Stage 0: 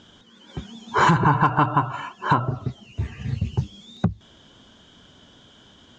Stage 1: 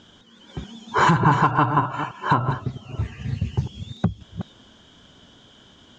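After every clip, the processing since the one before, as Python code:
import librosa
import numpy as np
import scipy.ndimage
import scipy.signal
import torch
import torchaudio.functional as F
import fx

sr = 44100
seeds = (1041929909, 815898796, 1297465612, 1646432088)

y = fx.reverse_delay(x, sr, ms=302, wet_db=-9.5)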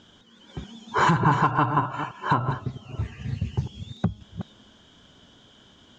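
y = fx.comb_fb(x, sr, f0_hz=210.0, decay_s=1.2, harmonics='all', damping=0.0, mix_pct=30)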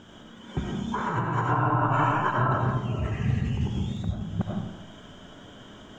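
y = fx.peak_eq(x, sr, hz=4300.0, db=-12.5, octaves=0.9)
y = fx.over_compress(y, sr, threshold_db=-29.0, ratio=-1.0)
y = fx.rev_freeverb(y, sr, rt60_s=0.81, hf_ratio=0.45, predelay_ms=50, drr_db=-1.5)
y = F.gain(torch.from_numpy(y), 1.5).numpy()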